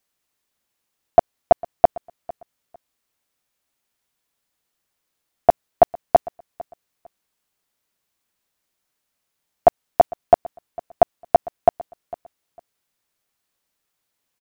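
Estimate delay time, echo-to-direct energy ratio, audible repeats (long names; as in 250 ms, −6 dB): 452 ms, −21.0 dB, 2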